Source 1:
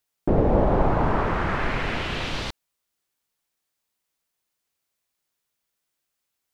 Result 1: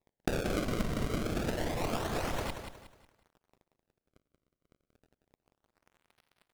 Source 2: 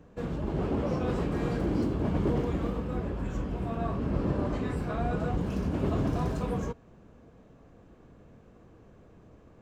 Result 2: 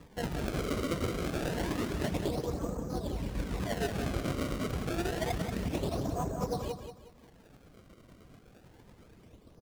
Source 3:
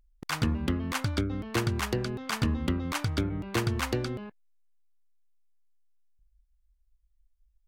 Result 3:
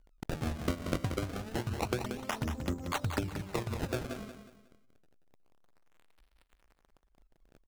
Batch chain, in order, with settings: Wiener smoothing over 15 samples; reverb removal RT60 0.95 s; dynamic EQ 660 Hz, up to +8 dB, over -44 dBFS, Q 1.3; compressor 8:1, threshold -30 dBFS; crackle 210/s -54 dBFS; tremolo triangle 8.9 Hz, depth 45%; decimation with a swept rate 29×, swing 160% 0.28 Hz; on a send: feedback echo 0.182 s, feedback 34%, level -8 dB; on the sum: Doppler distortion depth 0.19 ms; gain +2.5 dB

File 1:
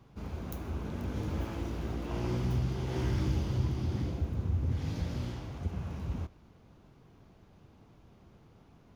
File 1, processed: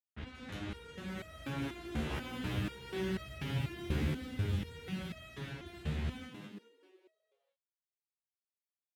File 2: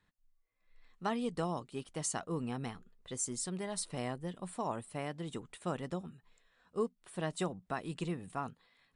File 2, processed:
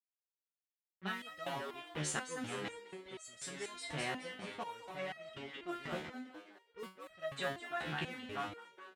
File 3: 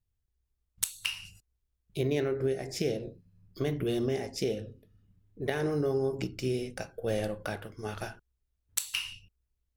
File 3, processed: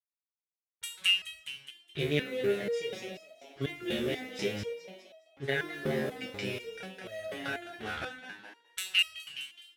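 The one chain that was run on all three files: level-crossing sampler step -44 dBFS; low-pass opened by the level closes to 1900 Hz, open at -30.5 dBFS; HPF 47 Hz 24 dB/oct; band shelf 2300 Hz +10 dB; on a send: frequency-shifting echo 0.209 s, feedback 47%, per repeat +70 Hz, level -6.5 dB; on the sum: stepped resonator 4.1 Hz 75–640 Hz; gain +6.5 dB

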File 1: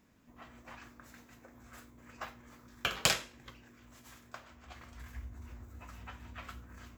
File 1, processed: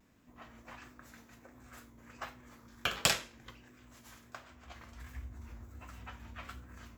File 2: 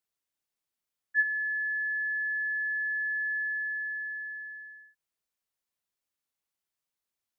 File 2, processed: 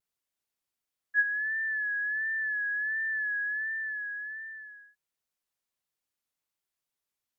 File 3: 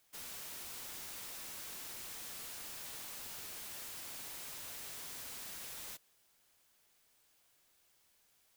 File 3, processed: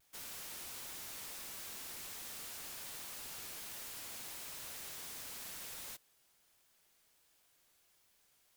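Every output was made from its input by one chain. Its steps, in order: vibrato 1.4 Hz 59 cents

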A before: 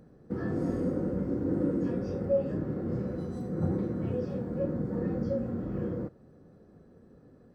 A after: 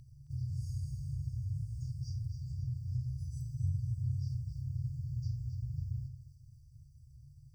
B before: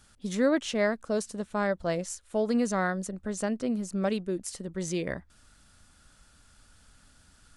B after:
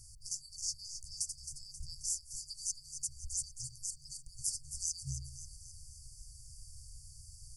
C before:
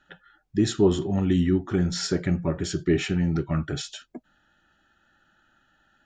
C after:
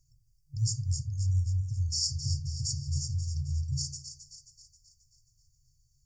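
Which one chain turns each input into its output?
notches 50/100 Hz; FFT band-reject 150–4500 Hz; in parallel at +3 dB: compressor, threshold -47 dBFS; on the sum: split-band echo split 650 Hz, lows 85 ms, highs 0.267 s, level -9 dB

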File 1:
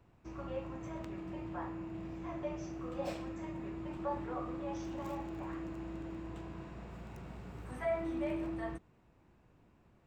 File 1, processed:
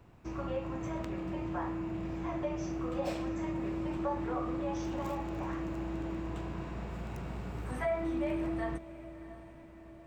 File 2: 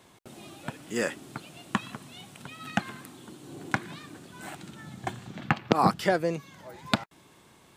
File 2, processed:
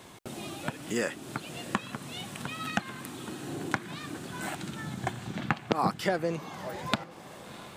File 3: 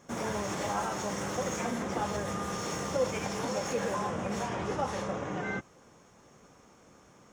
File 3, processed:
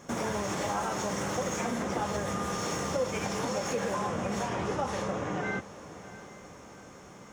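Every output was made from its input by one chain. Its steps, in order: compressor 2:1, threshold -40 dBFS; diffused feedback echo 0.686 s, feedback 50%, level -15.5 dB; gain +7 dB

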